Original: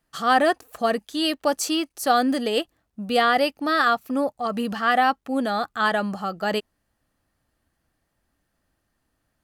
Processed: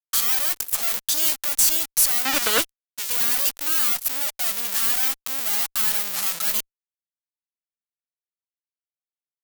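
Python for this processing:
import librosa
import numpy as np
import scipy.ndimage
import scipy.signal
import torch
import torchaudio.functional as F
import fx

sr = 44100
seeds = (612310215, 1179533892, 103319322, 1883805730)

y = fx.halfwave_hold(x, sr)
y = np.diff(y, prepend=0.0)
y = fx.fixed_phaser(y, sr, hz=310.0, stages=6, at=(2.25, 3.1))
y = fx.fuzz(y, sr, gain_db=41.0, gate_db=-49.0)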